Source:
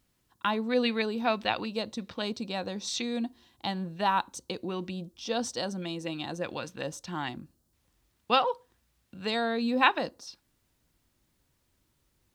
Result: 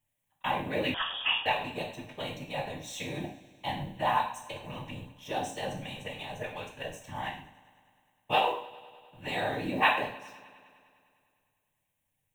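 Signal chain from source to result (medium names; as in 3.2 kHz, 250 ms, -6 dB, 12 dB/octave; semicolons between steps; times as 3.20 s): companding laws mixed up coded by A; bass shelf 130 Hz -8 dB; static phaser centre 1.3 kHz, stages 6; whisper effect; multi-head delay 101 ms, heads first and second, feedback 63%, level -23.5 dB; gated-style reverb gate 170 ms falling, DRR 0 dB; 0.94–1.46 s: frequency inversion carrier 3.5 kHz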